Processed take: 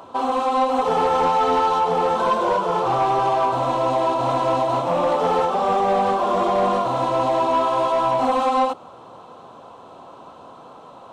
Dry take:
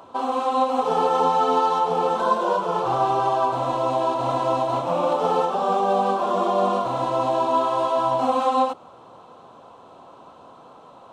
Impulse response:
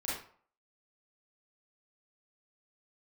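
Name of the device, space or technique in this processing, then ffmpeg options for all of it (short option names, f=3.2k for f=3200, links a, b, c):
saturation between pre-emphasis and de-emphasis: -af "highshelf=f=2.6k:g=8.5,asoftclip=type=tanh:threshold=-16dB,highshelf=f=2.6k:g=-8.5,volume=4dB"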